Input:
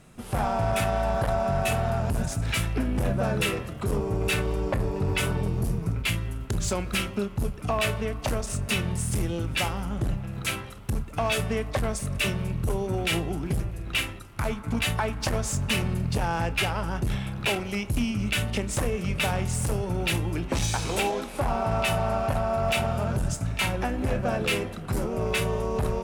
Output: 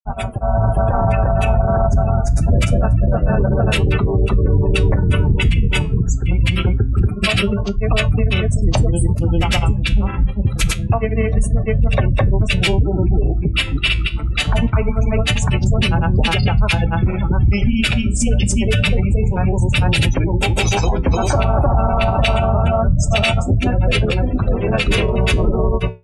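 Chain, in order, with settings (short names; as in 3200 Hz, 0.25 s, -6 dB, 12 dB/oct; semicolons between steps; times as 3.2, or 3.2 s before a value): low shelf 78 Hz +11.5 dB; spectral gate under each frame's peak -25 dB strong; added harmonics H 2 -29 dB, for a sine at -9.5 dBFS; grains 0.1 s, grains 20/s, spray 0.574 s, pitch spread up and down by 0 st; flange 0.25 Hz, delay 7.2 ms, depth 7.7 ms, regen -73%; AGC gain up to 9 dB; dynamic EQ 5300 Hz, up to +5 dB, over -43 dBFS, Q 0.93; maximiser +12 dB; gain -5.5 dB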